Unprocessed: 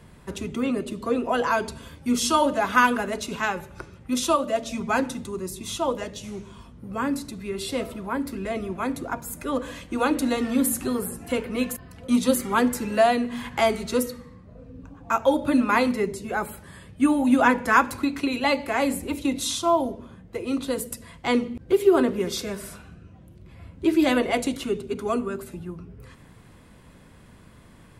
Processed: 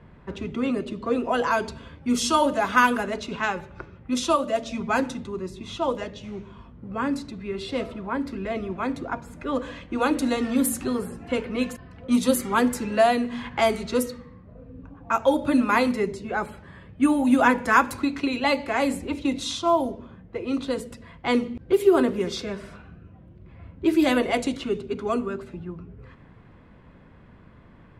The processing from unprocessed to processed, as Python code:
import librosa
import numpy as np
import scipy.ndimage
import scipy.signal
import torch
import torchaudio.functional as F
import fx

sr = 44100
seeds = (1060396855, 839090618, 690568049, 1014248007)

y = fx.env_lowpass(x, sr, base_hz=2100.0, full_db=-17.0)